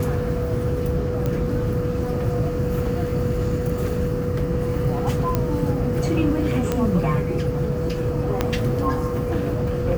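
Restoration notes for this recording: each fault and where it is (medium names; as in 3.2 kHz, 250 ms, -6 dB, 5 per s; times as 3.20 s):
whine 490 Hz -26 dBFS
1.26 s: pop -13 dBFS
5.35 s: pop -8 dBFS
6.72 s: pop -9 dBFS
8.41 s: pop -6 dBFS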